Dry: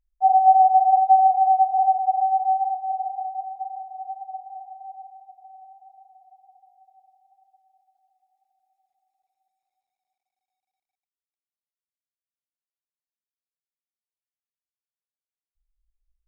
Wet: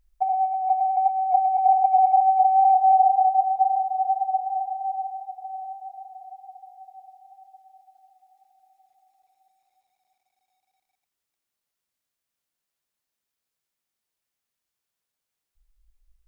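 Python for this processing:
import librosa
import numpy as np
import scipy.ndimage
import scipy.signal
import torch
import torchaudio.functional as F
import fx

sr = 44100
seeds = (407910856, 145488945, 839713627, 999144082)

p1 = x + fx.echo_single(x, sr, ms=85, db=-15.5, dry=0)
p2 = fx.over_compress(p1, sr, threshold_db=-25.0, ratio=-1.0)
y = p2 * 10.0 ** (5.5 / 20.0)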